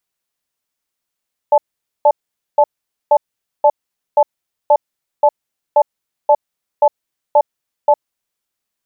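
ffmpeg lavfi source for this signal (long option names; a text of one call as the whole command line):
ffmpeg -f lavfi -i "aevalsrc='0.355*(sin(2*PI*590*t)+sin(2*PI*866*t))*clip(min(mod(t,0.53),0.06-mod(t,0.53))/0.005,0,1)':duration=6.48:sample_rate=44100" out.wav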